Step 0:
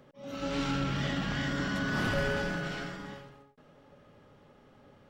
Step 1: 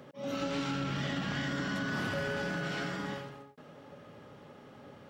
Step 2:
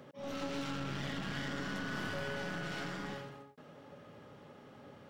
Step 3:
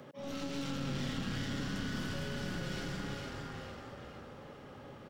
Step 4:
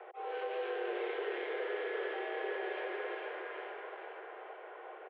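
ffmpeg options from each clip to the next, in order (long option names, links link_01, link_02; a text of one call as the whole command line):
ffmpeg -i in.wav -af "highpass=99,acompressor=threshold=-38dB:ratio=6,volume=6.5dB" out.wav
ffmpeg -i in.wav -af "aeval=exprs='clip(val(0),-1,0.00944)':channel_layout=same,volume=-2.5dB" out.wav
ffmpeg -i in.wav -filter_complex "[0:a]asplit=6[link_01][link_02][link_03][link_04][link_05][link_06];[link_02]adelay=456,afreqshift=-34,volume=-5dB[link_07];[link_03]adelay=912,afreqshift=-68,volume=-13.2dB[link_08];[link_04]adelay=1368,afreqshift=-102,volume=-21.4dB[link_09];[link_05]adelay=1824,afreqshift=-136,volume=-29.5dB[link_10];[link_06]adelay=2280,afreqshift=-170,volume=-37.7dB[link_11];[link_01][link_07][link_08][link_09][link_10][link_11]amix=inputs=6:normalize=0,acrossover=split=360|3000[link_12][link_13][link_14];[link_13]acompressor=threshold=-47dB:ratio=6[link_15];[link_12][link_15][link_14]amix=inputs=3:normalize=0,volume=2.5dB" out.wav
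ffmpeg -i in.wav -filter_complex "[0:a]asplit=2[link_01][link_02];[link_02]aecho=0:1:797:0.282[link_03];[link_01][link_03]amix=inputs=2:normalize=0,highpass=frequency=160:width_type=q:width=0.5412,highpass=frequency=160:width_type=q:width=1.307,lowpass=frequency=2600:width_type=q:width=0.5176,lowpass=frequency=2600:width_type=q:width=0.7071,lowpass=frequency=2600:width_type=q:width=1.932,afreqshift=220,volume=2dB" out.wav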